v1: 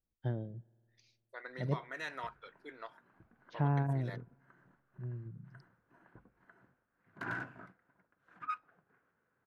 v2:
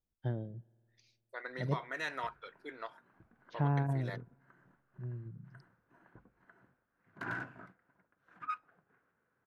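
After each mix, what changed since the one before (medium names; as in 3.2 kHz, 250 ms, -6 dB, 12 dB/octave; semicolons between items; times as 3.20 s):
second voice +3.5 dB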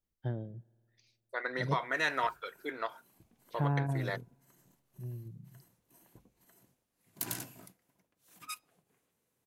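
second voice +7.5 dB; background: remove resonant low-pass 1.5 kHz, resonance Q 5.2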